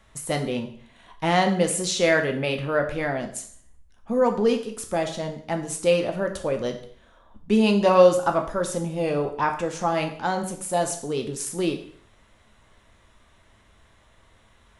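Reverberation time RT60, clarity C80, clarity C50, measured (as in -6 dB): 0.55 s, 13.0 dB, 10.0 dB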